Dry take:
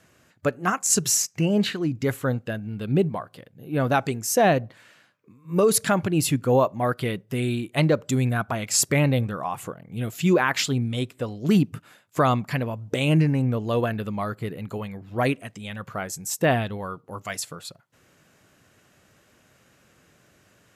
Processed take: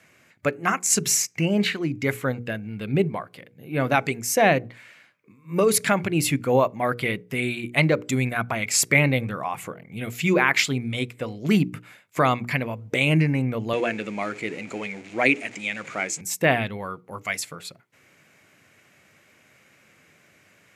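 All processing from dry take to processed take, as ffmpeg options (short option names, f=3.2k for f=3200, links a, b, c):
-filter_complex "[0:a]asettb=1/sr,asplit=3[a][b][c];[a]atrim=end=13.734[d];[b]atrim=start=13.73:end=16.21,asetpts=PTS-STARTPTS,afade=t=in:d=0.004:c=qsin,afade=t=out:st=2.476:d=0.004:c=qsin,aeval=exprs='val(0)+0.5*0.0106*sgn(val(0))':c=same,highpass=220,equalizer=f=310:t=q:w=4:g=6,equalizer=f=1.1k:t=q:w=4:g=-5,equalizer=f=2.4k:t=q:w=4:g=5,equalizer=f=6.9k:t=q:w=4:g=7,lowpass=f=8.9k:w=0.5412,lowpass=f=8.9k:w=1.3066[e];[c]atrim=start=16.206[f];[d][e]acrossfade=d=0.004:c1=hsin:c2=qsin[g];[g][f]acrossfade=d=0.004:c1=qsin:c2=hsin,highpass=99,equalizer=f=2.2k:t=o:w=0.43:g=11.5,bandreject=f=60:t=h:w=6,bandreject=f=120:t=h:w=6,bandreject=f=180:t=h:w=6,bandreject=f=240:t=h:w=6,bandreject=f=300:t=h:w=6,bandreject=f=360:t=h:w=6,bandreject=f=420:t=h:w=6,bandreject=f=480:t=h:w=6"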